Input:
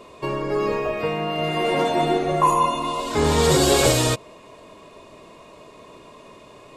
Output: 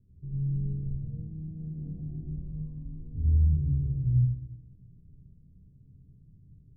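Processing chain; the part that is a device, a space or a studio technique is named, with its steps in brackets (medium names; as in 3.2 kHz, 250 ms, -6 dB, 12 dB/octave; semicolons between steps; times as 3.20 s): club heard from the street (peak limiter -13.5 dBFS, peak gain reduction 8.5 dB; low-pass 130 Hz 24 dB/octave; reverberation RT60 1.3 s, pre-delay 56 ms, DRR -5 dB)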